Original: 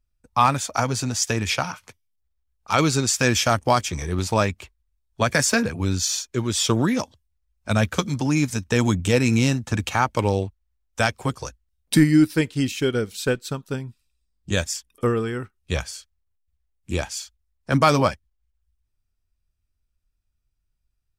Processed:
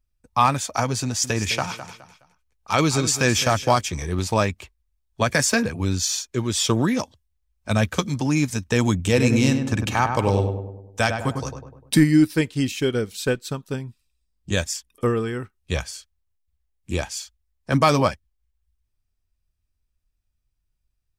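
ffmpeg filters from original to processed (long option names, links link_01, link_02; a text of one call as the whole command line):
ffmpeg -i in.wav -filter_complex "[0:a]asettb=1/sr,asplit=3[link_01][link_02][link_03];[link_01]atrim=end=1.034[link_04];[link_02]atrim=start=1.03:end=3.77,asetpts=PTS-STARTPTS,afade=type=in:duration=0.004:curve=qsin,afade=type=out:start_time=2.736:duration=0.004:curve=qsin,aecho=1:1:209|418|627:0.251|0.0754|0.0226,atrim=end_sample=120834[link_05];[link_03]atrim=start=3.766[link_06];[link_04][link_05]acrossfade=duration=0.004:curve1=hsin:curve2=qsin[link_07];[link_07][link_06]acrossfade=duration=0.004:curve1=qsin:curve2=hsin,asettb=1/sr,asplit=3[link_08][link_09][link_10];[link_08]atrim=end=8.994[link_11];[link_09]atrim=start=8.99:end=11.99,asetpts=PTS-STARTPTS,afade=type=in:duration=0.004:curve=qsin,afade=type=out:start_time=2.996:duration=0.004:curve=qsin,asplit=2[link_12][link_13];[link_13]adelay=100,lowpass=frequency=1500:poles=1,volume=-5dB,asplit=2[link_14][link_15];[link_15]adelay=100,lowpass=frequency=1500:poles=1,volume=0.53,asplit=2[link_16][link_17];[link_17]adelay=100,lowpass=frequency=1500:poles=1,volume=0.53,asplit=2[link_18][link_19];[link_19]adelay=100,lowpass=frequency=1500:poles=1,volume=0.53,asplit=2[link_20][link_21];[link_21]adelay=100,lowpass=frequency=1500:poles=1,volume=0.53,asplit=2[link_22][link_23];[link_23]adelay=100,lowpass=frequency=1500:poles=1,volume=0.53,asplit=2[link_24][link_25];[link_25]adelay=100,lowpass=frequency=1500:poles=1,volume=0.53[link_26];[link_12][link_14][link_16][link_18][link_20][link_22][link_24][link_26]amix=inputs=8:normalize=0,atrim=end_sample=132300[link_27];[link_10]atrim=start=11.986[link_28];[link_11][link_27]acrossfade=duration=0.004:curve1=hsin:curve2=qsin[link_29];[link_29][link_28]acrossfade=duration=0.004:curve1=qsin:curve2=hsin,bandreject=frequency=1400:width=17" out.wav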